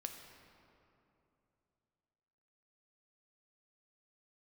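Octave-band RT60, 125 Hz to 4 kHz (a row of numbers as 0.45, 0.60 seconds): 3.5, 3.2, 3.0, 2.8, 2.2, 1.6 seconds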